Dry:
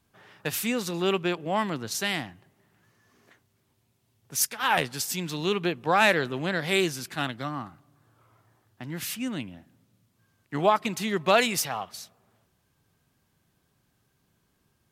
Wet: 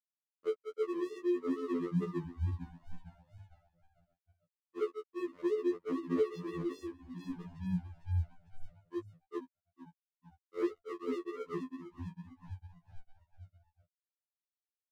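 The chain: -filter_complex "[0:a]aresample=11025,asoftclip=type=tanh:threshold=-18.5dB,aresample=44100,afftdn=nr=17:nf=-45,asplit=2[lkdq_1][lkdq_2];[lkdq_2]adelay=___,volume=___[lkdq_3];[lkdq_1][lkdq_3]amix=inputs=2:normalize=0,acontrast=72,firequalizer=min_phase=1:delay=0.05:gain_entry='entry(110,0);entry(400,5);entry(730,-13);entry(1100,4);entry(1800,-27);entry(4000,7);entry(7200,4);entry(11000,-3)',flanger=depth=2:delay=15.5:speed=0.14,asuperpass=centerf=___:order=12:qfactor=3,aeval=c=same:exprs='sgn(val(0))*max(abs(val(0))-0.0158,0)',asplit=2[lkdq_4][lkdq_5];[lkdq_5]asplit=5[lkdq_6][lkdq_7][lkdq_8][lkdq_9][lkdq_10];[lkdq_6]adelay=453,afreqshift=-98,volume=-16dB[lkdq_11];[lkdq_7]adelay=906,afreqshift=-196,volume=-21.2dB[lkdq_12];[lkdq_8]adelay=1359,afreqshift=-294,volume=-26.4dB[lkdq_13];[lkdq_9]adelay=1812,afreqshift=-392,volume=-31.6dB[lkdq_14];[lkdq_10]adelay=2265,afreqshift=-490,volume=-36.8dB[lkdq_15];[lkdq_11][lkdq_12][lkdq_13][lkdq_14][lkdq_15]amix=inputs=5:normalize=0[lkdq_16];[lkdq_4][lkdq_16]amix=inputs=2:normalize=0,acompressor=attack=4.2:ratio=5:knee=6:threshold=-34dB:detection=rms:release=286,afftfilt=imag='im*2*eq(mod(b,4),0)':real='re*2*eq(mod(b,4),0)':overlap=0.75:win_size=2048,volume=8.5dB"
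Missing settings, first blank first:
16, -8.5dB, 390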